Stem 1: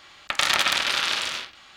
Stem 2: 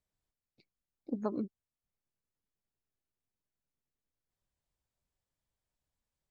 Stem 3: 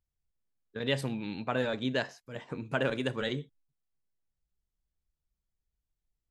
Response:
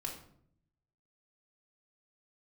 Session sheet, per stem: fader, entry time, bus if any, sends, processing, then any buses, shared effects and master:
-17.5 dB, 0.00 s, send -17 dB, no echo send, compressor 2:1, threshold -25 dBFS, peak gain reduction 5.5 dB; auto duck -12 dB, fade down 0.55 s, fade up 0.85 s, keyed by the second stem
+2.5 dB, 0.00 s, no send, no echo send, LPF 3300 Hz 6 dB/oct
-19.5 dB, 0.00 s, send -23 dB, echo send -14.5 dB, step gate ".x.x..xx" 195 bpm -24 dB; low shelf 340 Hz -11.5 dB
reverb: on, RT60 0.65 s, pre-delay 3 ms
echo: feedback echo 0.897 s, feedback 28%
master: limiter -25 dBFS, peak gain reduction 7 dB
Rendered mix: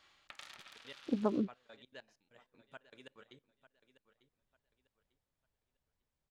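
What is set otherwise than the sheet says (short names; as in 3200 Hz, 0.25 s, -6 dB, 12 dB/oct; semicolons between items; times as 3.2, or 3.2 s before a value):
stem 1: send off; master: missing limiter -25 dBFS, peak gain reduction 7 dB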